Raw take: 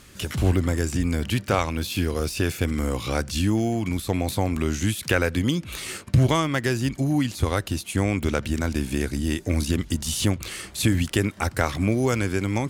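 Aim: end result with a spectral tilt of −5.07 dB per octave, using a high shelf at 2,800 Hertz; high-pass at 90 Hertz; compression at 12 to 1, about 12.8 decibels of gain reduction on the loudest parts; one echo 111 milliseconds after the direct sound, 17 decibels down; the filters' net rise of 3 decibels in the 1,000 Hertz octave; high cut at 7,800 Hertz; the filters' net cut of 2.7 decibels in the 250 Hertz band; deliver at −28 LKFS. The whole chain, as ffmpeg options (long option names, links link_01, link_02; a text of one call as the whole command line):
ffmpeg -i in.wav -af "highpass=90,lowpass=7800,equalizer=frequency=250:width_type=o:gain=-3.5,equalizer=frequency=1000:width_type=o:gain=5,highshelf=frequency=2800:gain=-5,acompressor=threshold=-28dB:ratio=12,aecho=1:1:111:0.141,volume=6dB" out.wav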